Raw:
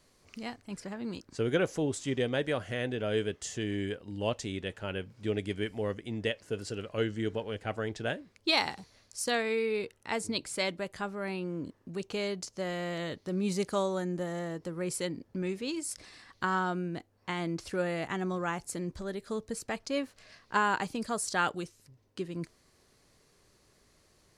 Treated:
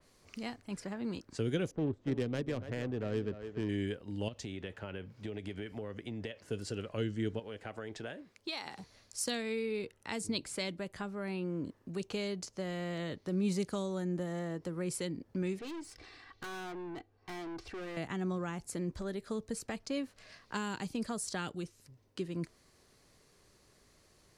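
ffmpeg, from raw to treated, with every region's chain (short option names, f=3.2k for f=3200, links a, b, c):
-filter_complex "[0:a]asettb=1/sr,asplit=3[a][b][c];[a]atrim=end=1.714[d];[b]atrim=start=1.71:end=3.69,asetpts=PTS-STARTPTS,afade=t=in:d=0.004:c=qsin,afade=t=out:st=1.976:d=0.004:c=qsin,adynamicsmooth=sensitivity=3:basefreq=550,aecho=1:1:288:0.211,atrim=end_sample=87318[e];[c]atrim=start=3.686[f];[d][e]acrossfade=d=0.004:c1=hsin:c2=qsin[g];[g][f]acrossfade=d=0.004:c1=qsin:c2=hsin,asettb=1/sr,asplit=3[h][i][j];[h]atrim=end=4.284[k];[i]atrim=start=4.28:end=6.45,asetpts=PTS-STARTPTS,afade=t=in:d=0.004:c=qsin,afade=t=out:st=2.166:d=0.004:c=qsin,highpass=f=47:w=0.5412,highpass=f=47:w=1.3066,equalizer=f=8.7k:t=o:w=0.83:g=-6,acompressor=threshold=-35dB:ratio=12:attack=3.2:release=140:knee=1:detection=peak[l];[j]atrim=start=6.446[m];[k][l]acrossfade=d=0.004:c1=hsin:c2=qsin[n];[n][m]acrossfade=d=0.004:c1=qsin:c2=hsin,asettb=1/sr,asplit=3[o][p][q];[o]atrim=end=7.394[r];[p]atrim=start=7.39:end=8.79,asetpts=PTS-STARTPTS,afade=t=in:d=0.004:c=qsin,afade=t=out:st=1.396:d=0.004:c=qsin,lowshelf=f=160:g=-9,acompressor=threshold=-38dB:ratio=3:attack=3.2:release=140:knee=1:detection=peak[s];[q]atrim=start=8.786[t];[r][s]acrossfade=d=0.004:c1=hsin:c2=qsin[u];[u][t]acrossfade=d=0.004:c1=qsin:c2=hsin,asettb=1/sr,asplit=3[v][w][x];[v]atrim=end=15.594[y];[w]atrim=start=15.59:end=17.97,asetpts=PTS-STARTPTS,afade=t=in:d=0.004:c=qsin,afade=t=out:st=2.376:d=0.004:c=qsin,lowpass=4.3k,aecho=1:1:2.6:0.56,atrim=end_sample=104958,aeval=exprs='(tanh(100*val(0)+0.3)-tanh(0.3))/100':c=same[z];[x]atrim=start=17.966[aa];[y][z]acrossfade=d=0.004:c1=hsin:c2=qsin[ab];[ab][aa]acrossfade=d=0.004:c1=qsin:c2=hsin,acrossover=split=330|3000[ac][ad][ae];[ad]acompressor=threshold=-40dB:ratio=6[af];[ac][af][ae]amix=inputs=3:normalize=0,adynamicequalizer=threshold=0.00178:dfrequency=3100:dqfactor=0.7:tfrequency=3100:tqfactor=0.7:attack=5:release=100:ratio=0.375:range=3:mode=cutabove:tftype=highshelf"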